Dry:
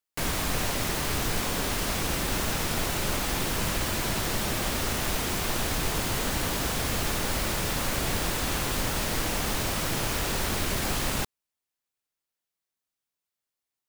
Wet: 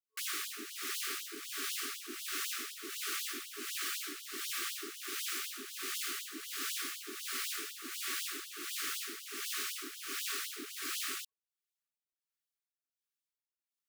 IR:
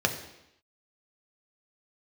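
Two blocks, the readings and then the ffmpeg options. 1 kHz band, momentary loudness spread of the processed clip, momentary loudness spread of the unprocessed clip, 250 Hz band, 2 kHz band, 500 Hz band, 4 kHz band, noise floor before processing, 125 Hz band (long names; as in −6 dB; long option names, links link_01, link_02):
−15.5 dB, 5 LU, 0 LU, −18.5 dB, −9.5 dB, −19.5 dB, −8.0 dB, below −85 dBFS, below −40 dB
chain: -filter_complex "[0:a]afftfilt=real='re*(1-between(b*sr/4096,440,1100))':imag='im*(1-between(b*sr/4096,440,1100))':win_size=4096:overlap=0.75,acrossover=split=500[link_01][link_02];[link_01]aeval=exprs='val(0)*(1-0.7/2+0.7/2*cos(2*PI*1.4*n/s))':channel_layout=same[link_03];[link_02]aeval=exprs='val(0)*(1-0.7/2-0.7/2*cos(2*PI*1.4*n/s))':channel_layout=same[link_04];[link_03][link_04]amix=inputs=2:normalize=0,afftfilt=real='re*gte(b*sr/1024,220*pow(2900/220,0.5+0.5*sin(2*PI*4*pts/sr)))':imag='im*gte(b*sr/1024,220*pow(2900/220,0.5+0.5*sin(2*PI*4*pts/sr)))':win_size=1024:overlap=0.75,volume=-5dB"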